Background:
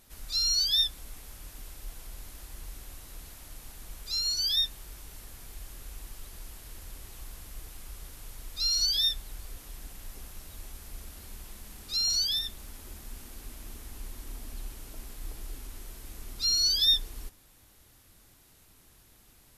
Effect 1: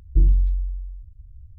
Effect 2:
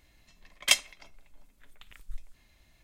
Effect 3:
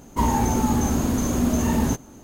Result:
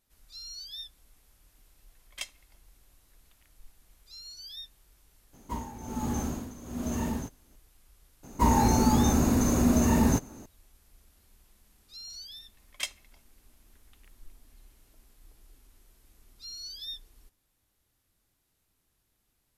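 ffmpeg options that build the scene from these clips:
-filter_complex "[2:a]asplit=2[s0][s1];[3:a]asplit=2[s2][s3];[0:a]volume=0.15[s4];[s2]tremolo=f=1.2:d=0.81[s5];[s3]bandreject=f=3200:w=6.9[s6];[s0]atrim=end=2.83,asetpts=PTS-STARTPTS,volume=0.158,afade=t=in:d=0.004:c=hsin,afade=t=out:st=2.826:d=0.004:c=hsin,adelay=1500[s7];[s5]atrim=end=2.23,asetpts=PTS-STARTPTS,volume=0.355,afade=t=in:d=0.004:c=hsin,afade=t=out:st=2.226:d=0.004:c=hsin,adelay=235053S[s8];[s6]atrim=end=2.23,asetpts=PTS-STARTPTS,volume=0.841,afade=t=in:d=0.004:c=hsin,afade=t=out:st=2.226:d=0.004:c=hsin,adelay=8230[s9];[s1]atrim=end=2.83,asetpts=PTS-STARTPTS,volume=0.266,afade=t=in:d=0.004:c=hsin,afade=t=out:st=2.826:d=0.004:c=hsin,adelay=12120[s10];[s4][s7][s8][s9][s10]amix=inputs=5:normalize=0"

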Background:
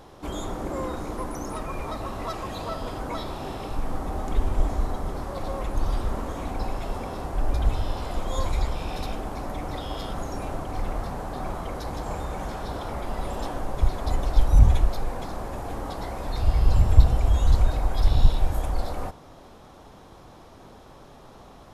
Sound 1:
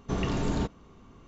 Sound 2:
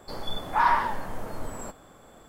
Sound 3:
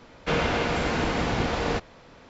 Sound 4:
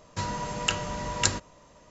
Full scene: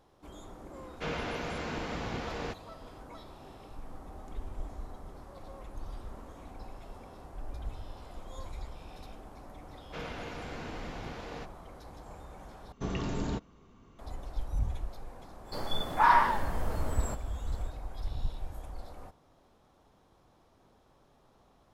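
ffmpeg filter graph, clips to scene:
-filter_complex "[3:a]asplit=2[s0][s1];[0:a]volume=0.15,asplit=2[s2][s3];[s2]atrim=end=12.724[s4];[1:a]atrim=end=1.27,asetpts=PTS-STARTPTS,volume=0.562[s5];[s3]atrim=start=13.986[s6];[s0]atrim=end=2.29,asetpts=PTS-STARTPTS,volume=0.282,afade=t=in:d=0.004:c=hsin,afade=t=out:st=2.286:d=0.004:c=hsin,adelay=740[s7];[s1]atrim=end=2.29,asetpts=PTS-STARTPTS,volume=0.15,afade=t=in:d=0.004:c=hsin,afade=t=out:st=2.286:d=0.004:c=hsin,adelay=9660[s8];[2:a]atrim=end=2.28,asetpts=PTS-STARTPTS,volume=0.944,afade=t=in:d=0.05,afade=t=out:st=2.23:d=0.05,adelay=15440[s9];[s4][s5]acrossfade=d=0.004:c1=hsin:c2=hsin[s10];[s10][s6]acrossfade=d=0.004:c1=hsin:c2=hsin[s11];[s11][s7][s8][s9]amix=inputs=4:normalize=0"

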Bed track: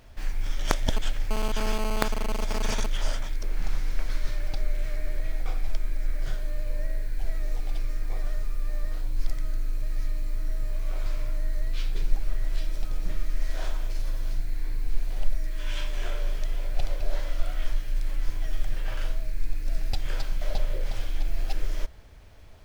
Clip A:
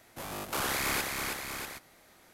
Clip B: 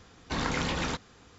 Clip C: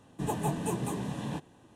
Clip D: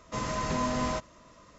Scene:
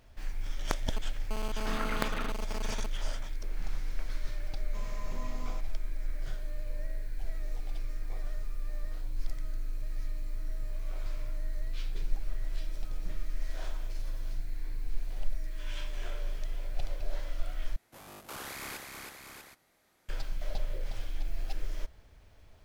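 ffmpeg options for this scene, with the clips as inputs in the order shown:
-filter_complex "[0:a]volume=0.447[s0];[2:a]highpass=180,equalizer=f=420:t=q:w=4:g=-9,equalizer=f=890:t=q:w=4:g=-5,equalizer=f=1300:t=q:w=4:g=7,lowpass=f=3600:w=0.5412,lowpass=f=3600:w=1.3066[s1];[4:a]asuperstop=centerf=1600:order=4:qfactor=2.9[s2];[s0]asplit=2[s3][s4];[s3]atrim=end=17.764[s5];[1:a]atrim=end=2.33,asetpts=PTS-STARTPTS,volume=0.299[s6];[s4]atrim=start=20.086[s7];[s1]atrim=end=1.38,asetpts=PTS-STARTPTS,volume=0.473,afade=t=in:d=0.004:c=hsin,afade=t=out:st=1.376:d=0.004:c=hsin,adelay=1350[s8];[s2]atrim=end=1.58,asetpts=PTS-STARTPTS,volume=0.158,afade=t=in:d=0.004:c=hsin,afade=t=out:st=1.576:d=0.004:c=hsin,adelay=203301S[s9];[s5][s6]acrossfade=d=0.004:c1=hsin:c2=hsin[s10];[s10][s7]acrossfade=d=0.004:c1=hsin:c2=hsin[s11];[s11][s8][s9]amix=inputs=3:normalize=0"

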